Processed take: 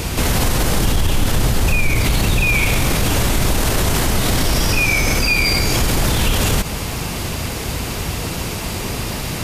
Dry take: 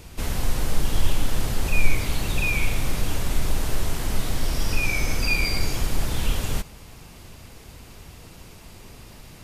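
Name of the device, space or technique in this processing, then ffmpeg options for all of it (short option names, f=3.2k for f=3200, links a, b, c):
loud club master: -filter_complex "[0:a]asettb=1/sr,asplit=3[a][b][c];[a]atrim=end=0.854[d];[b]atrim=start=0.85:end=2.54,asetpts=PTS-STARTPTS,afade=t=in:d=0.004:c=qsin,afade=t=out:st=1.686:d=0.004:c=qsin,lowshelf=f=140:g=5.5[e];[c]atrim=start=2.536[f];[d][e]acrossfade=d=0.004:c1=hsin:c2=qsin[g];[g][f]acrossfade=d=0.004:c1=qsin:c2=hsin,highpass=f=53:p=1,acompressor=threshold=-29dB:ratio=2.5,asoftclip=type=hard:threshold=-20.5dB,alimiter=level_in=28.5dB:limit=-1dB:release=50:level=0:latency=1,volume=-6.5dB"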